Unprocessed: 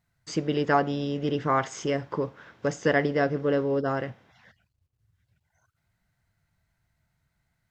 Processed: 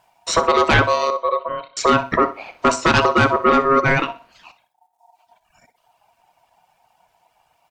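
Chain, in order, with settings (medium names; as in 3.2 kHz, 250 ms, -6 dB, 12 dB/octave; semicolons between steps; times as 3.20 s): reverb removal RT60 1.2 s; in parallel at -1 dB: peak limiter -19.5 dBFS, peak gain reduction 10 dB; 1.10–1.77 s: on the sum: cascade formant filter i; sine folder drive 9 dB, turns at -7 dBFS; feedback delay 62 ms, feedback 27%, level -15 dB; on a send at -17 dB: reverberation RT60 0.35 s, pre-delay 3 ms; on the sum: ring modulator 820 Hz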